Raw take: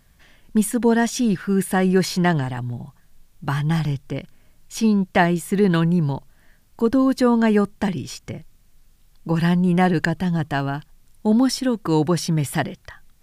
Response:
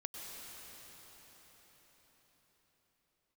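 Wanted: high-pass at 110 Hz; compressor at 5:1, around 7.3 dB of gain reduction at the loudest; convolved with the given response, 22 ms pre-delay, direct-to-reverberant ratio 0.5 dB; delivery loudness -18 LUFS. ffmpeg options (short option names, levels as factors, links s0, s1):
-filter_complex "[0:a]highpass=110,acompressor=threshold=0.0891:ratio=5,asplit=2[s0][s1];[1:a]atrim=start_sample=2205,adelay=22[s2];[s1][s2]afir=irnorm=-1:irlink=0,volume=1.06[s3];[s0][s3]amix=inputs=2:normalize=0,volume=2"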